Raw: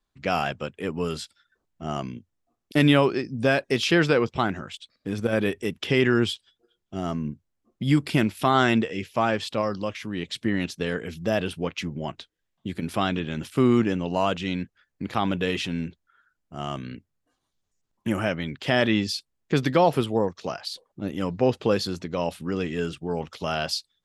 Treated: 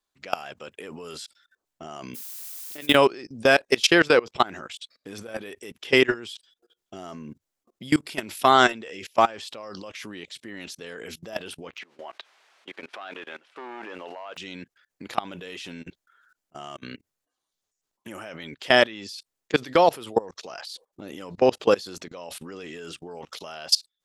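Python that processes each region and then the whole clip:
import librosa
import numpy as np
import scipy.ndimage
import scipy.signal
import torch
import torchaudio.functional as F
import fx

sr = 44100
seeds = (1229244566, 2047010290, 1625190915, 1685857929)

y = fx.low_shelf(x, sr, hz=160.0, db=-8.5, at=(2.14, 2.94), fade=0.02)
y = fx.level_steps(y, sr, step_db=19, at=(2.14, 2.94), fade=0.02)
y = fx.dmg_noise_colour(y, sr, seeds[0], colour='blue', level_db=-49.0, at=(2.14, 2.94), fade=0.02)
y = fx.dmg_noise_colour(y, sr, seeds[1], colour='white', level_db=-52.0, at=(11.77, 14.36), fade=0.02)
y = fx.overload_stage(y, sr, gain_db=17.0, at=(11.77, 14.36), fade=0.02)
y = fx.bandpass_edges(y, sr, low_hz=560.0, high_hz=2300.0, at=(11.77, 14.36), fade=0.02)
y = fx.chain(y, sr, fx.over_compress(threshold_db=-37.0, ratio=-1.0),
    fx.auto_swell(attack_ms=104.0), at=(15.82, 16.86))
y = fx.bass_treble(y, sr, bass_db=-14, treble_db=5)
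y = fx.level_steps(y, sr, step_db=23)
y = y * librosa.db_to_amplitude(7.5)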